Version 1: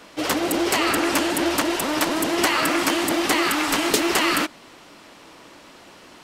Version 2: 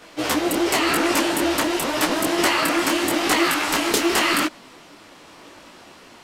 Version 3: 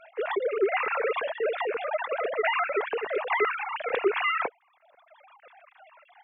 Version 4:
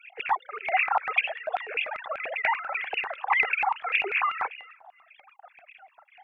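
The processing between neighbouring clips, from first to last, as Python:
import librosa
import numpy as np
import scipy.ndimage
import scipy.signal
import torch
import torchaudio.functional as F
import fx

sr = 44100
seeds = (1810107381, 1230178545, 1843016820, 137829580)

y1 = fx.detune_double(x, sr, cents=31)
y1 = y1 * 10.0 ** (4.5 / 20.0)
y2 = fx.sine_speech(y1, sr)
y2 = fx.dereverb_blind(y2, sr, rt60_s=1.2)
y2 = fx.notch(y2, sr, hz=3000.0, q=5.4)
y2 = y2 * 10.0 ** (-6.0 / 20.0)
y3 = fx.echo_feedback(y2, sr, ms=341, feedback_pct=25, wet_db=-22.5)
y3 = fx.phaser_stages(y3, sr, stages=4, low_hz=390.0, high_hz=1100.0, hz=1.8, feedback_pct=15)
y3 = fx.filter_lfo_highpass(y3, sr, shape='square', hz=5.1, low_hz=780.0, high_hz=2500.0, q=7.3)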